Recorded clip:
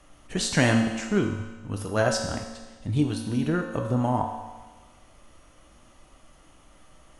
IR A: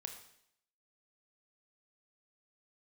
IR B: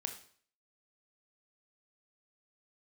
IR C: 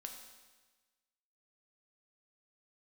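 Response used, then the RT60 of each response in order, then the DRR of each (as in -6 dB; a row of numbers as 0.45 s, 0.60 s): C; 0.70 s, 0.50 s, 1.3 s; 4.5 dB, 5.0 dB, 2.5 dB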